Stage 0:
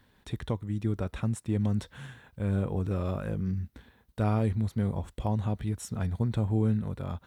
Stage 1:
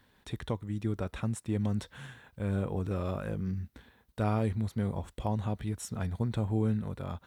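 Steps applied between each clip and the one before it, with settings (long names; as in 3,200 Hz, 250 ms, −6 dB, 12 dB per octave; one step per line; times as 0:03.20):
low-shelf EQ 280 Hz −4 dB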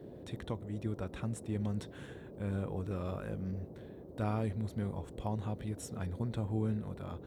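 noise in a band 54–500 Hz −44 dBFS
level −5 dB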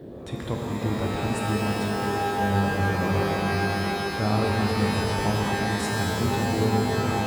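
reverb with rising layers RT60 3.9 s, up +12 semitones, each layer −2 dB, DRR −1 dB
level +7.5 dB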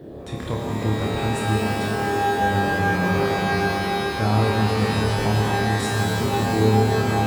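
flutter between parallel walls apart 4.7 metres, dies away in 0.32 s
level +1.5 dB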